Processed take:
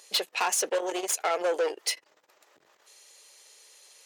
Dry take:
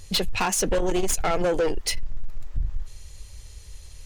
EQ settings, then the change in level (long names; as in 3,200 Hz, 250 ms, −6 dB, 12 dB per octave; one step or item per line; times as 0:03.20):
high-pass filter 430 Hz 24 dB per octave
−2.0 dB